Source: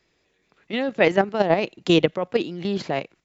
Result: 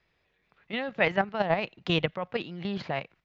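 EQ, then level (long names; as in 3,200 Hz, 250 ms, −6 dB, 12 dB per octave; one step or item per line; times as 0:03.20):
parametric band 320 Hz −10 dB 1.4 octaves
dynamic equaliser 430 Hz, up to −4 dB, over −32 dBFS, Q 0.79
high-frequency loss of the air 230 metres
0.0 dB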